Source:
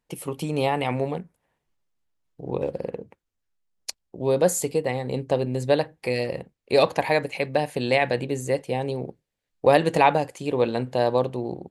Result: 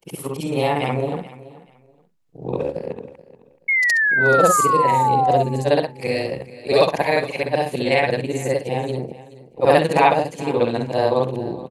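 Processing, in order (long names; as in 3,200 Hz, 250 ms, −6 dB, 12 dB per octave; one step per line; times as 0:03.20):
every overlapping window played backwards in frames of 138 ms
sound drawn into the spectrogram fall, 0:03.68–0:05.43, 680–2,200 Hz −24 dBFS
repeating echo 429 ms, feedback 22%, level −18 dB
level +6.5 dB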